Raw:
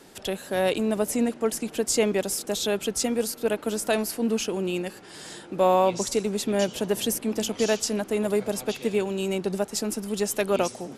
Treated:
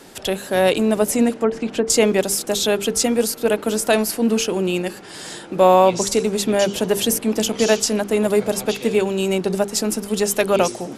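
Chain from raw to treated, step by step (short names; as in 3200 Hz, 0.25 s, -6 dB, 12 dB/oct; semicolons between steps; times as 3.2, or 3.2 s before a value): 1.39–1.9 treble ducked by the level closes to 1600 Hz, closed at -21 dBFS; notches 50/100/150/200/250/300/350/400/450 Hz; gain +7.5 dB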